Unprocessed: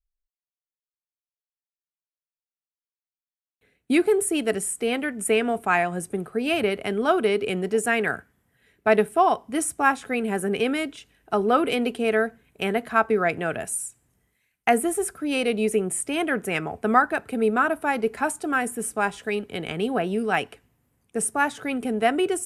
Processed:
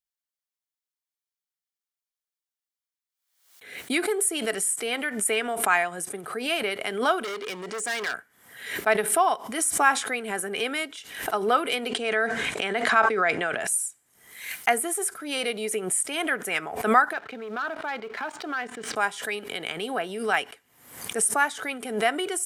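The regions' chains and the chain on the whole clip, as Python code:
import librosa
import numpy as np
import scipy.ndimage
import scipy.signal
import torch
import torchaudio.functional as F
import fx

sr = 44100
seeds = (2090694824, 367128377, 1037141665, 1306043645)

y = fx.chain(x, sr, fx.lowpass(hz=8800.0, slope=24),
    fx.clip_hard(threshold_db=-25.0), at=(7.24, 8.14))
y = fx.chain(y, sr, fx.lowpass(hz=12000.0, slope=12),
    fx.sustainer(db_per_s=140.0), at=(9.83, 10.44))
y = fx.chain(y, sr, fx.lowpass(hz=8300.0, slope=24),
    fx.sustainer(db_per_s=22.0), at=(11.88, 13.67))
y = fx.chain(y, sr, fx.lowpass(hz=4300.0, slope=24),
    fx.leveller(passes=1),
    fx.level_steps(step_db=14), at=(17.13, 18.96))
y = fx.highpass(y, sr, hz=1300.0, slope=6)
y = fx.notch(y, sr, hz=2600.0, q=12.0)
y = fx.pre_swell(y, sr, db_per_s=82.0)
y = y * librosa.db_to_amplitude(3.0)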